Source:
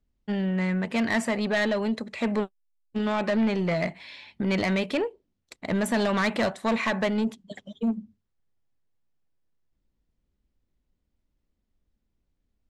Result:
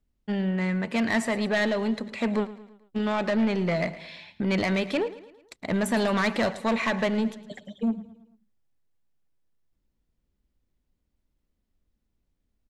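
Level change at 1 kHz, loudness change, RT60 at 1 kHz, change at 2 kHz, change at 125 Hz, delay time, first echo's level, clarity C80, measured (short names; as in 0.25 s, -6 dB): 0.0 dB, 0.0 dB, none, 0.0 dB, 0.0 dB, 0.11 s, -16.5 dB, none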